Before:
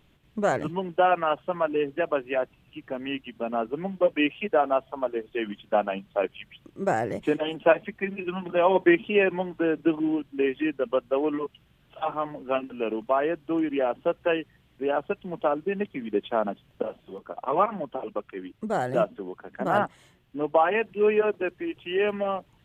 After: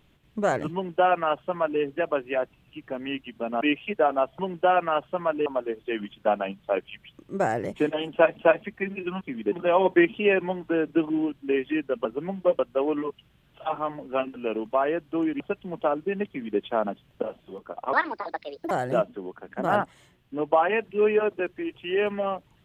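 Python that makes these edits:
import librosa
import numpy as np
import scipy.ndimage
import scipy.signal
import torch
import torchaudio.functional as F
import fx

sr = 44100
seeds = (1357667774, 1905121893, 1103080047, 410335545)

y = fx.edit(x, sr, fx.duplicate(start_s=0.74, length_s=1.07, to_s=4.93),
    fx.move(start_s=3.61, length_s=0.54, to_s=10.95),
    fx.repeat(start_s=7.58, length_s=0.26, count=2),
    fx.cut(start_s=13.76, length_s=1.24),
    fx.duplicate(start_s=15.88, length_s=0.31, to_s=8.42),
    fx.speed_span(start_s=17.53, length_s=1.2, speed=1.54), tone=tone)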